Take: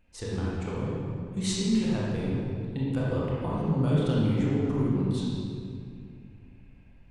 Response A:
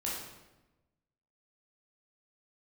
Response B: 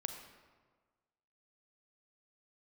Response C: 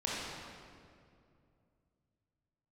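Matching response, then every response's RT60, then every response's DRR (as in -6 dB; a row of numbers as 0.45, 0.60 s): C; 1.0, 1.5, 2.4 s; -6.0, 5.5, -7.0 dB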